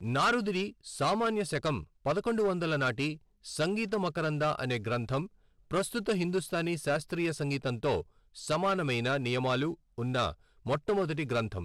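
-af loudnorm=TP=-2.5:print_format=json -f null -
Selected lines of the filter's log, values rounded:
"input_i" : "-31.5",
"input_tp" : "-21.4",
"input_lra" : "1.2",
"input_thresh" : "-41.6",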